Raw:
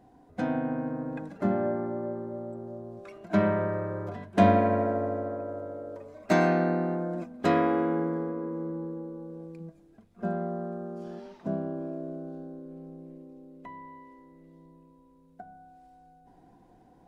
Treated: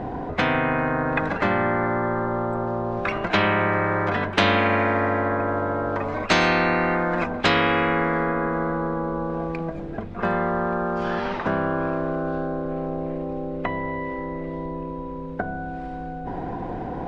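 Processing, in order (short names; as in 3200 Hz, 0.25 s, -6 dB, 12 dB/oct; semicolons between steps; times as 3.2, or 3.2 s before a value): LPF 2300 Hz 12 dB/oct; spectral compressor 4:1; gain +7.5 dB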